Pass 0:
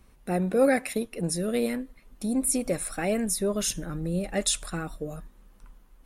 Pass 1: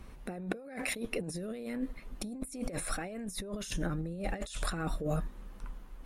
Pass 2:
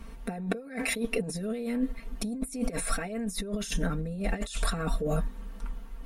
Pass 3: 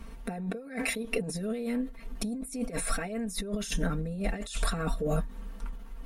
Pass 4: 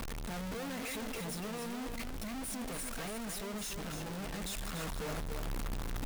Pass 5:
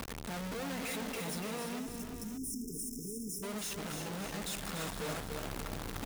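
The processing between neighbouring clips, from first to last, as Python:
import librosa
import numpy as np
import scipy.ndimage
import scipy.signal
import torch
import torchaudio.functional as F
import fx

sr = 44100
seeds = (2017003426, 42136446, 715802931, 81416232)

y1 = fx.over_compress(x, sr, threshold_db=-37.0, ratio=-1.0)
y1 = fx.high_shelf(y1, sr, hz=6000.0, db=-9.0)
y2 = y1 + 0.95 * np.pad(y1, (int(4.4 * sr / 1000.0), 0))[:len(y1)]
y2 = y2 * librosa.db_to_amplitude(2.0)
y3 = fx.end_taper(y2, sr, db_per_s=140.0)
y4 = np.sign(y3) * np.sqrt(np.mean(np.square(y3)))
y4 = fx.rider(y4, sr, range_db=10, speed_s=2.0)
y4 = y4 + 10.0 ** (-6.5 / 20.0) * np.pad(y4, (int(288 * sr / 1000.0), 0))[:len(y4)]
y4 = y4 * librosa.db_to_amplitude(-8.0)
y5 = fx.spec_erase(y4, sr, start_s=1.79, length_s=1.64, low_hz=470.0, high_hz=5100.0)
y5 = fx.highpass(y5, sr, hz=100.0, slope=6)
y5 = fx.echo_multitap(y5, sr, ms=(343, 581), db=(-9.5, -11.5))
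y5 = y5 * librosa.db_to_amplitude(1.0)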